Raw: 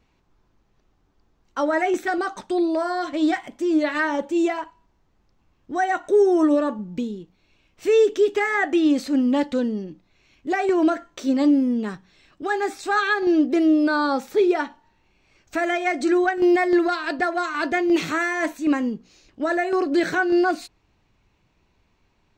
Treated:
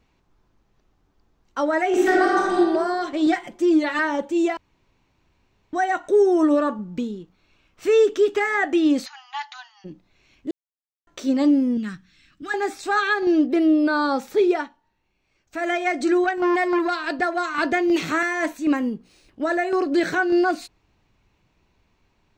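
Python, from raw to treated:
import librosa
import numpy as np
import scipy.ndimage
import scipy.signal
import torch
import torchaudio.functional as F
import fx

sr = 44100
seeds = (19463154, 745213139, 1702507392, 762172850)

y = fx.reverb_throw(x, sr, start_s=1.87, length_s=0.68, rt60_s=1.6, drr_db=-5.5)
y = fx.comb(y, sr, ms=5.7, depth=0.63, at=(3.26, 3.99))
y = fx.peak_eq(y, sr, hz=1300.0, db=6.0, octaves=0.63, at=(6.48, 8.38))
y = fx.brickwall_bandpass(y, sr, low_hz=710.0, high_hz=7000.0, at=(9.05, 9.84), fade=0.02)
y = fx.band_shelf(y, sr, hz=620.0, db=-14.5, octaves=1.7, at=(11.77, 12.54))
y = fx.peak_eq(y, sr, hz=6600.0, db=-10.0, octaves=0.48, at=(13.47, 13.96))
y = fx.transformer_sat(y, sr, knee_hz=910.0, at=(16.24, 16.95))
y = fx.band_squash(y, sr, depth_pct=70, at=(17.58, 18.23))
y = fx.resample_linear(y, sr, factor=3, at=(18.76, 19.42))
y = fx.edit(y, sr, fx.room_tone_fill(start_s=4.57, length_s=1.16),
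    fx.silence(start_s=10.51, length_s=0.56),
    fx.fade_down_up(start_s=14.54, length_s=1.15, db=-9.0, fade_s=0.16), tone=tone)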